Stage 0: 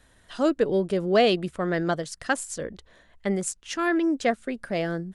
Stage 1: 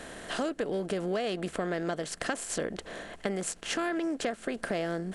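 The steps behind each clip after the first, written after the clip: per-bin compression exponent 0.6; compressor 10:1, threshold -26 dBFS, peak gain reduction 13.5 dB; gain -2 dB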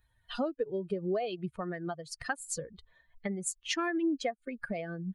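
per-bin expansion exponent 3; gain +4.5 dB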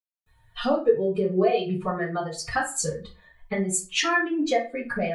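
reverb RT60 0.35 s, pre-delay 0.262 s

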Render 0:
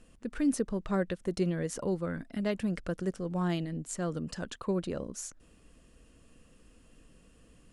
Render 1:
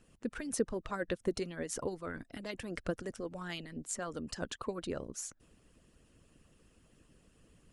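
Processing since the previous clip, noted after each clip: harmonic-percussive split harmonic -16 dB; gain +1 dB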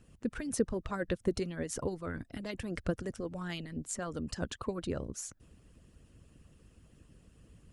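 bell 78 Hz +9.5 dB 2.6 oct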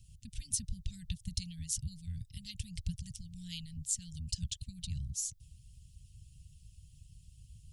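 inverse Chebyshev band-stop 350–1300 Hz, stop band 60 dB; gain +5.5 dB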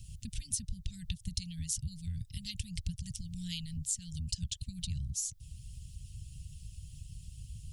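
compressor 2:1, threshold -49 dBFS, peak gain reduction 11.5 dB; gain +9.5 dB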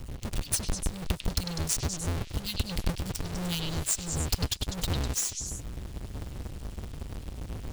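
half-waves squared off; delay with a stepping band-pass 0.1 s, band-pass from 3400 Hz, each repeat 0.7 oct, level -2.5 dB; gain +3.5 dB

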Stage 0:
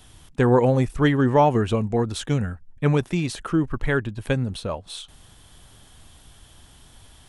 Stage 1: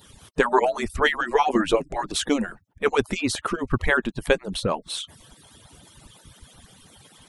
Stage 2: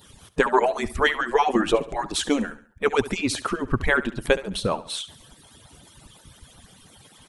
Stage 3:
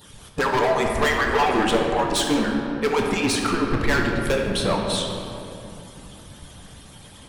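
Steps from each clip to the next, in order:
median-filter separation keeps percussive; gain +6 dB
feedback echo 70 ms, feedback 41%, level -16 dB
hard clip -22 dBFS, distortion -6 dB; shoebox room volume 120 m³, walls hard, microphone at 0.38 m; gain +3 dB

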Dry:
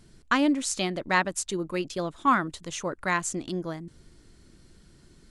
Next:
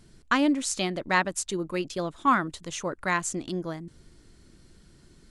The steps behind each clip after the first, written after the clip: nothing audible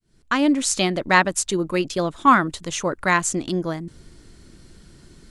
opening faded in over 0.64 s; gain +7.5 dB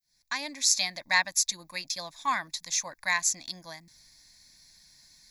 pre-emphasis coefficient 0.97; fixed phaser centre 2000 Hz, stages 8; gain +7 dB

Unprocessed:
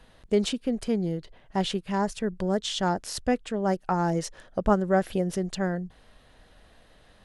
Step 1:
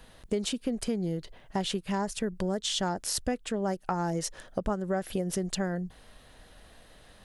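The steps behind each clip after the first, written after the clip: high shelf 7600 Hz +10 dB; compressor 6:1, threshold -28 dBFS, peak gain reduction 12 dB; gain +1.5 dB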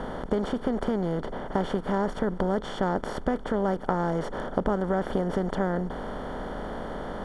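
per-bin compression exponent 0.4; polynomial smoothing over 41 samples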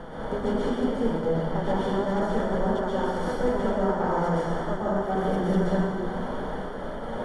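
flange 0.93 Hz, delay 5.7 ms, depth 3 ms, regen +38%; step gate "xxxxx.x.xxxxx." 109 bpm; plate-style reverb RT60 1.9 s, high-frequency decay 0.85×, pre-delay 0.11 s, DRR -8 dB; gain -2 dB

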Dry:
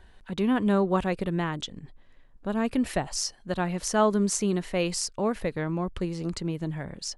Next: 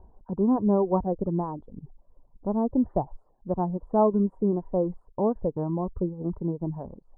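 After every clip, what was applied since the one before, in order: reverb removal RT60 0.72 s; elliptic low-pass 970 Hz, stop band 60 dB; gain +3 dB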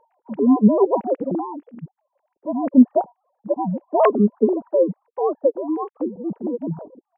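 sine-wave speech; dynamic EQ 590 Hz, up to +6 dB, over -41 dBFS, Q 3; gain +5.5 dB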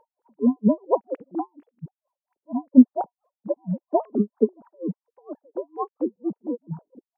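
dB-linear tremolo 4.3 Hz, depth 40 dB; gain +1 dB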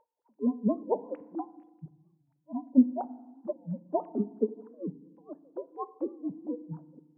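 FDN reverb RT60 1.1 s, low-frequency decay 1.45×, high-frequency decay 0.55×, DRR 15.5 dB; record warp 45 rpm, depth 160 cents; gain -8 dB

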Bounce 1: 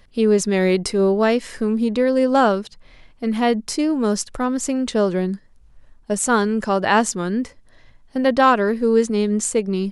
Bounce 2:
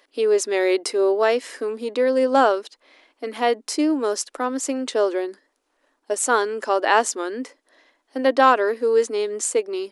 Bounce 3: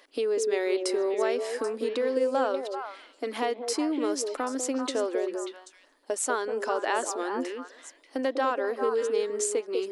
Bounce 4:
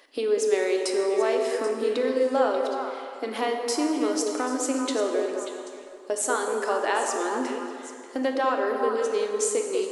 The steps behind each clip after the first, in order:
elliptic high-pass 280 Hz, stop band 40 dB
compressor 2.5:1, threshold -32 dBFS, peak gain reduction 15 dB; delay with a stepping band-pass 0.196 s, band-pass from 410 Hz, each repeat 1.4 oct, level -2 dB; gain +1.5 dB
plate-style reverb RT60 2.4 s, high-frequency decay 0.65×, DRR 3 dB; gain +1.5 dB

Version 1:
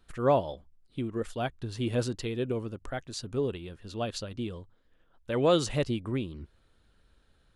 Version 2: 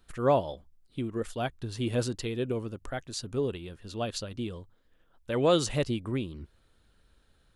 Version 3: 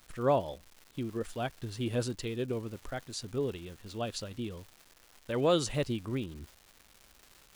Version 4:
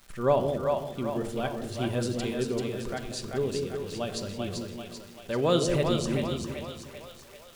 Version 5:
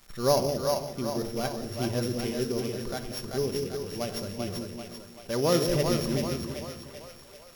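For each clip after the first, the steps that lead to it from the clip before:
high shelf 6600 Hz +5 dB
crackle 450/s -41 dBFS; gain -3 dB
split-band echo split 520 Hz, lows 0.179 s, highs 0.389 s, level -3.5 dB; shoebox room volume 2300 m³, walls furnished, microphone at 1.2 m; gain +2 dB
sample sorter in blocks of 8 samples

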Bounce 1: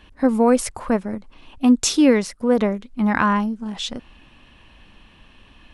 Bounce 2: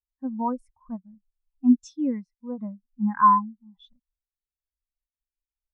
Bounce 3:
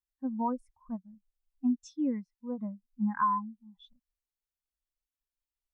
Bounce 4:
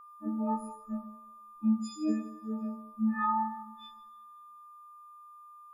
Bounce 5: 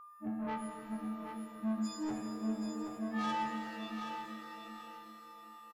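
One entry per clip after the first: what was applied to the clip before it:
EQ curve 160 Hz 0 dB, 390 Hz -14 dB, 990 Hz +3 dB, 2200 Hz -1 dB; spectral expander 2.5:1; gain -3.5 dB
compressor 6:1, threshold -22 dBFS, peak gain reduction 10 dB; gain -3 dB
frequency quantiser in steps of 6 st; two-slope reverb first 0.71 s, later 2.1 s, from -25 dB, DRR -3.5 dB; whine 1200 Hz -43 dBFS; gain -6.5 dB
soft clip -32.5 dBFS, distortion -8 dB; feedback echo 0.777 s, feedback 27%, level -7.5 dB; shimmer reverb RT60 3.8 s, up +7 st, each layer -8 dB, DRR 4 dB; gain -1 dB

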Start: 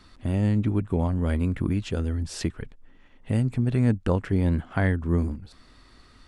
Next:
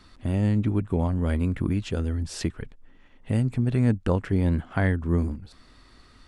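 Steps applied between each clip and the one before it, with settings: nothing audible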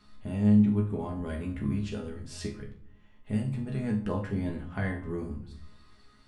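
resonator bank C#2 fifth, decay 0.3 s; reverb RT60 0.60 s, pre-delay 5 ms, DRR 5 dB; gain +2.5 dB

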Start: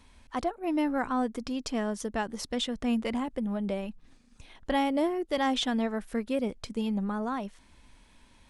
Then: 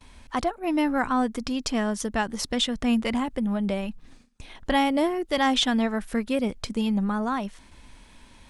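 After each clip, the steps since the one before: gate with hold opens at -49 dBFS; dynamic EQ 440 Hz, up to -5 dB, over -41 dBFS, Q 0.77; gain +7.5 dB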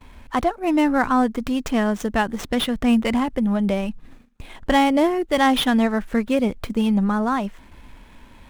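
median filter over 9 samples; gain +5.5 dB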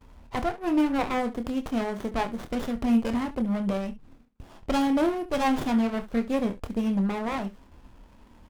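early reflections 26 ms -8 dB, 69 ms -15.5 dB; running maximum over 17 samples; gain -6 dB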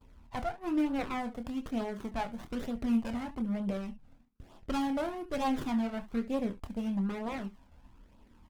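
flange 1.1 Hz, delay 0.2 ms, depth 1.3 ms, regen -29%; gain -4 dB

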